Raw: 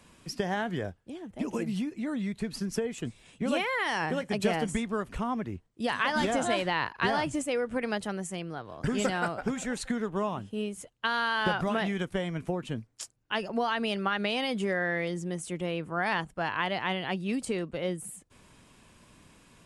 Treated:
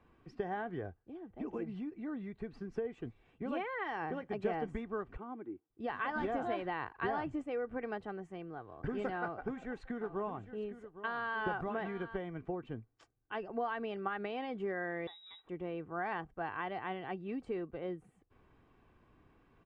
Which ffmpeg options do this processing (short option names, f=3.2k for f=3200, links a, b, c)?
-filter_complex "[0:a]asplit=3[a][b][c];[a]afade=t=out:st=5.16:d=0.02[d];[b]highpass=310,equalizer=f=320:t=q:w=4:g=9,equalizer=f=460:t=q:w=4:g=-5,equalizer=f=680:t=q:w=4:g=-10,equalizer=f=1.1k:t=q:w=4:g=-8,equalizer=f=1.8k:t=q:w=4:g=-10,equalizer=f=2.7k:t=q:w=4:g=-9,lowpass=f=3.1k:w=0.5412,lowpass=f=3.1k:w=1.3066,afade=t=in:st=5.16:d=0.02,afade=t=out:st=5.69:d=0.02[e];[c]afade=t=in:st=5.69:d=0.02[f];[d][e][f]amix=inputs=3:normalize=0,asettb=1/sr,asplit=3[g][h][i];[g]atrim=end=9.204[j];[h]atrim=start=9.2:end=12.17,asetpts=PTS-STARTPTS,afade=t=in:d=0.004:c=qsin,afade=t=out:st=2.966:d=0.004:c=qsin,aecho=1:1:810:0.224,atrim=end_sample=130977[k];[i]atrim=start=12.166[l];[j][k]acrossfade=d=0.004:c1=hsin:c2=qsin[m];[m][l]acrossfade=d=0.004:c1=qsin:c2=hsin,asettb=1/sr,asplit=3[n][o][p];[n]atrim=end=15.074[q];[o]atrim=start=15.07:end=15.49,asetpts=PTS-STARTPTS,afade=t=in:d=0.004:c=qsin,afade=t=out:st=0.416:d=0.004:c=qsin,lowpass=f=3.4k:t=q:w=0.5098,lowpass=f=3.4k:t=q:w=0.6013,lowpass=f=3.4k:t=q:w=0.9,lowpass=f=3.4k:t=q:w=2.563,afreqshift=-4000[r];[p]atrim=start=15.486[s];[q][r]acrossfade=d=0.004:c1=hsin:c2=qsin[t];[t][s]acrossfade=d=0.004:c1=qsin:c2=hsin,lowpass=1.6k,aecho=1:1:2.6:0.41,volume=-7.5dB"